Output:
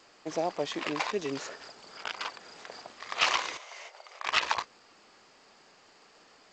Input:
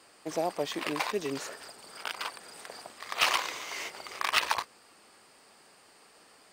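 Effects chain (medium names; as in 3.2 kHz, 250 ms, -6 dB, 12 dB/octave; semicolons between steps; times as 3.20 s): 3.57–4.26 s: ladder high-pass 500 Hz, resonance 45%; G.722 64 kbps 16 kHz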